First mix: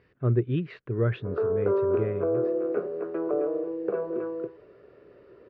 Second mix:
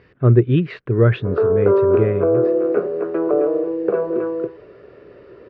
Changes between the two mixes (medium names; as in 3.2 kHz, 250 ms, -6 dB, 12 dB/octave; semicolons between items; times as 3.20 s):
speech +11.0 dB; background +9.5 dB